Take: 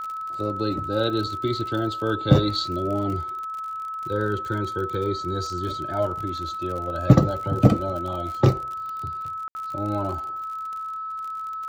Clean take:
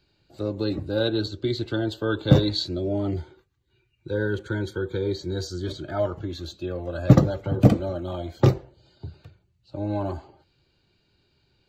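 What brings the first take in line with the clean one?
de-click; band-stop 1.3 kHz, Q 30; room tone fill 9.48–9.55 s

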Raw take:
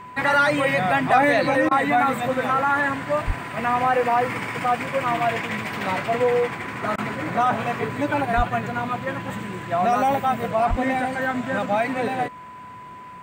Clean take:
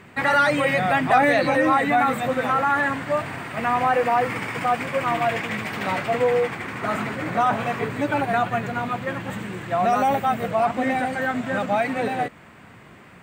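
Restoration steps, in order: band-stop 1 kHz, Q 30; 3.26–3.38 s: high-pass 140 Hz 24 dB/octave; 8.36–8.48 s: high-pass 140 Hz 24 dB/octave; 10.69–10.81 s: high-pass 140 Hz 24 dB/octave; interpolate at 1.69/6.96 s, 20 ms

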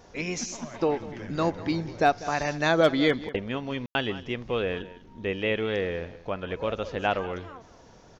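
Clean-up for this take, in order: clip repair -11 dBFS; room tone fill 3.86–3.95 s; inverse comb 196 ms -17 dB

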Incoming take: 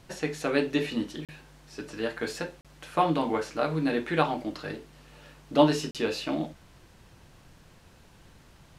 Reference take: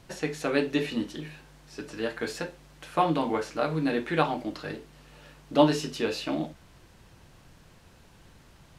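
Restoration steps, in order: interpolate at 1.25/2.61/5.91 s, 37 ms

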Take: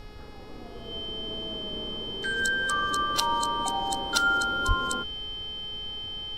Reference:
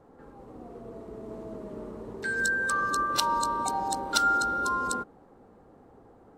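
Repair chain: de-hum 420.7 Hz, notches 13; band-stop 3.1 kHz, Q 30; de-plosive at 4.67 s; noise print and reduce 15 dB

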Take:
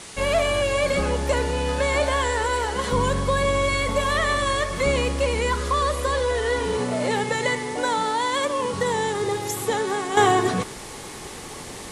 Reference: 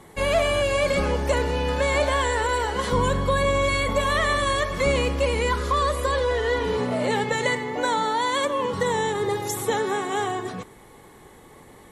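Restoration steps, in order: noise reduction 11 dB, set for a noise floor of -36 dBFS; gain correction -9.5 dB, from 10.17 s

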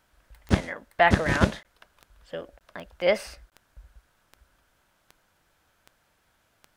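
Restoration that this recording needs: de-click; interpolate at 1.63/2.59/3.50 s, 18 ms

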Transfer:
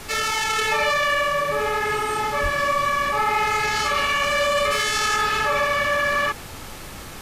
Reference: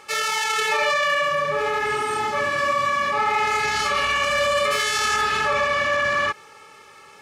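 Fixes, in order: de-plosive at 2.42 s; noise print and reduce 10 dB

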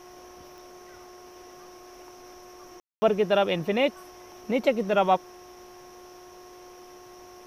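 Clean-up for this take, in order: de-click; de-hum 361 Hz, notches 3; room tone fill 2.80–3.02 s

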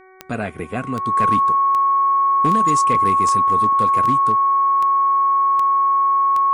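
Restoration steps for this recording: clip repair -10 dBFS; de-click; de-hum 375.8 Hz, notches 6; band-stop 1.1 kHz, Q 30

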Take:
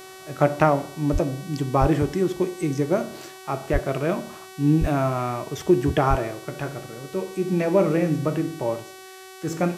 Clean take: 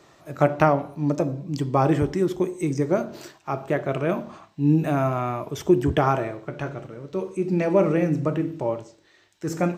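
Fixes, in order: de-hum 377.5 Hz, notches 36; de-plosive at 1.12/1.80/3.72/4.80/6.09 s

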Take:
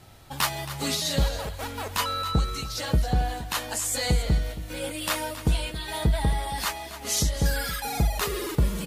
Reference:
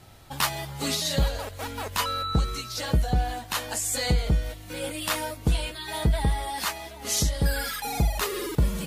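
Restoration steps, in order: clip repair -13 dBFS; inverse comb 273 ms -13.5 dB

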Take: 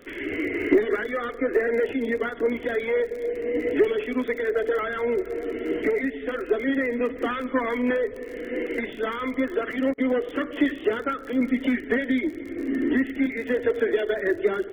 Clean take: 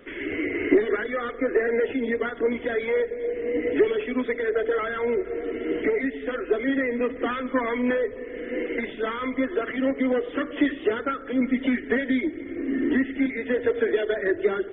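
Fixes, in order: clip repair -8.5 dBFS; de-click; interpolate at 9.94 s, 38 ms

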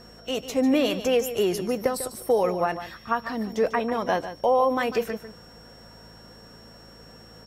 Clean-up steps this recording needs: de-hum 54.9 Hz, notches 4; band-stop 5.5 kHz, Q 30; inverse comb 147 ms -11.5 dB

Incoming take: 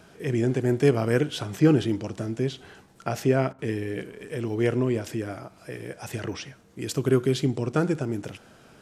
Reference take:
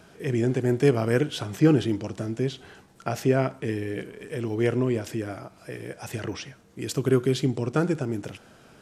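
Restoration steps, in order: interpolate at 3.53 s, 55 ms

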